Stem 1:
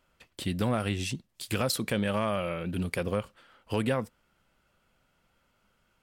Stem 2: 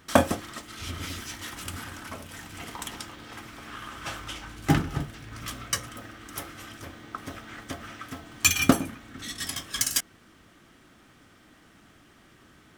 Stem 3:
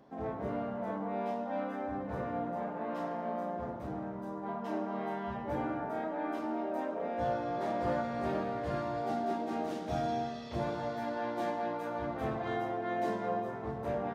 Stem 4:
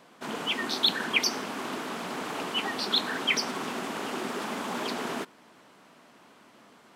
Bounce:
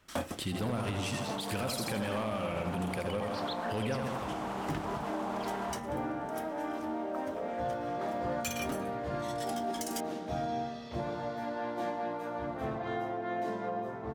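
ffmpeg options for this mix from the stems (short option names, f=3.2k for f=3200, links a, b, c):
-filter_complex "[0:a]asoftclip=type=hard:threshold=-21dB,volume=0.5dB,asplit=2[a][b];[b]volume=-5dB[c];[1:a]asoftclip=type=hard:threshold=-15.5dB,volume=-12dB[d];[2:a]adelay=400,volume=-0.5dB[e];[3:a]equalizer=f=790:w=0.96:g=13,alimiter=limit=-18.5dB:level=0:latency=1:release=223,adelay=550,volume=-10.5dB[f];[c]aecho=0:1:82|164|246|328|410|492|574|656:1|0.52|0.27|0.141|0.0731|0.038|0.0198|0.0103[g];[a][d][e][f][g]amix=inputs=5:normalize=0,alimiter=level_in=1dB:limit=-24dB:level=0:latency=1:release=103,volume=-1dB"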